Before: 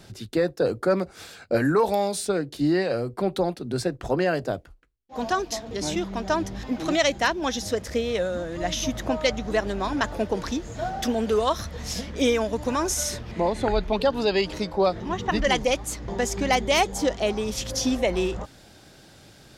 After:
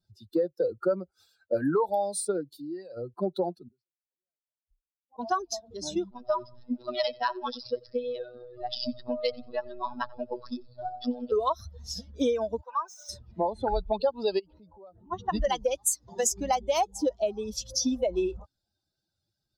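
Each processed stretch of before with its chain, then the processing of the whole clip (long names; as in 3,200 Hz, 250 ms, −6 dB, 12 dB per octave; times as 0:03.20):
0:02.48–0:02.97: high-shelf EQ 7,700 Hz +7.5 dB + downward compressor 2.5 to 1, threshold −32 dBFS
0:03.68–0:05.19: low-pass that shuts in the quiet parts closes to 800 Hz, open at −20 dBFS + gate with flip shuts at −28 dBFS, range −40 dB + level that may fall only so fast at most 150 dB per second
0:06.10–0:11.32: phases set to zero 123 Hz + repeating echo 88 ms, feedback 44%, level −14 dB + bad sample-rate conversion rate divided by 4×, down none, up filtered
0:12.61–0:13.09: running median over 3 samples + high-pass filter 800 Hz + mid-hump overdrive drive 7 dB, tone 1,400 Hz, clips at −16 dBFS
0:14.39–0:15.12: downward compressor 12 to 1, threshold −31 dBFS + transient designer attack −6 dB, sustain +1 dB + high-frequency loss of the air 230 metres
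0:15.77–0:16.32: high-pass filter 84 Hz + high-shelf EQ 3,600 Hz +10.5 dB + mains-hum notches 50/100/150/200/250/300/350/400/450 Hz
whole clip: spectral dynamics exaggerated over time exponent 2; graphic EQ with 10 bands 125 Hz −7 dB, 500 Hz +4 dB, 1,000 Hz +7 dB, 2,000 Hz −11 dB, 8,000 Hz +5 dB; downward compressor 4 to 1, threshold −26 dBFS; level +2.5 dB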